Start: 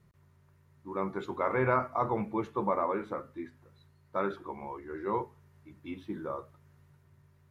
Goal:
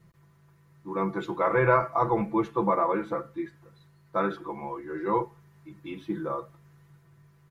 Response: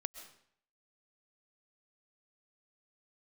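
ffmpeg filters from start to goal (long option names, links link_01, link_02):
-af "aecho=1:1:6:0.82,volume=3dB"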